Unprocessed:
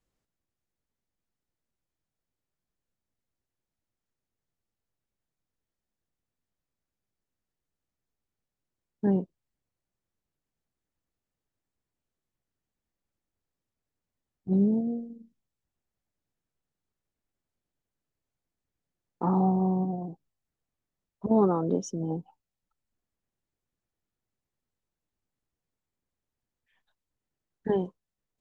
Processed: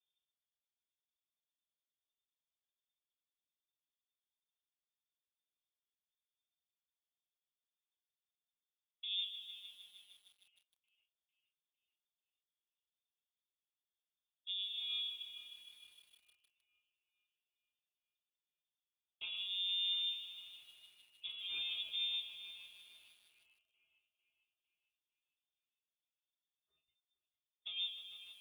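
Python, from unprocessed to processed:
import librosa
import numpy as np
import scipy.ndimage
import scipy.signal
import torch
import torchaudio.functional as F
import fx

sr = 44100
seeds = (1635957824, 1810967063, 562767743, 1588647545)

y = fx.peak_eq(x, sr, hz=370.0, db=4.5, octaves=2.0)
y = fx.leveller(y, sr, passes=2)
y = fx.over_compress(y, sr, threshold_db=-20.0, ratio=-0.5)
y = fx.cheby_harmonics(y, sr, harmonics=(5,), levels_db=(-15,), full_scale_db=-8.5)
y = 10.0 ** (-21.0 / 20.0) * np.tanh(y / 10.0 ** (-21.0 / 20.0))
y = fx.fixed_phaser(y, sr, hz=490.0, stages=6)
y = fx.resonator_bank(y, sr, root=55, chord='major', decay_s=0.21)
y = fx.echo_split(y, sr, split_hz=540.0, low_ms=127, high_ms=451, feedback_pct=52, wet_db=-12.0)
y = fx.freq_invert(y, sr, carrier_hz=3600)
y = fx.echo_crushed(y, sr, ms=154, feedback_pct=80, bits=10, wet_db=-11)
y = y * 10.0 ** (-2.0 / 20.0)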